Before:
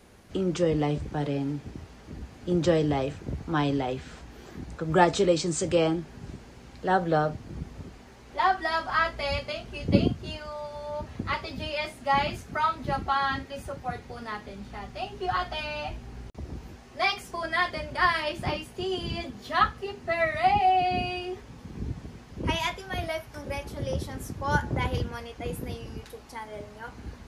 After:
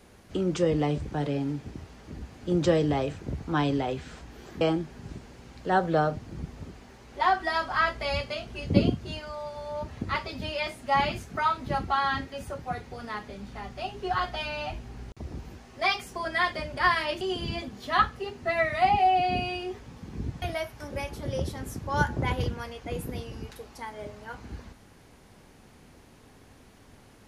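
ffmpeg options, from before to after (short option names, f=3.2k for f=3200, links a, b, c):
-filter_complex "[0:a]asplit=4[a][b][c][d];[a]atrim=end=4.612[e];[b]atrim=start=5.788:end=18.392[f];[c]atrim=start=18.828:end=22.042[g];[d]atrim=start=22.958[h];[e][f]acrossfade=d=0.004:c1=hsin:c2=hsin[i];[i][g]acrossfade=d=0.004:c1=hsin:c2=hsin[j];[j][h]acrossfade=d=0.004:c1=hsin:c2=hsin"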